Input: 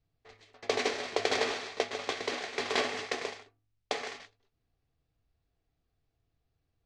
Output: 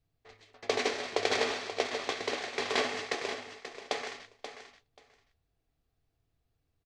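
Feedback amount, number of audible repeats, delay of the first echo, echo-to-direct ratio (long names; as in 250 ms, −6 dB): 16%, 2, 533 ms, −10.0 dB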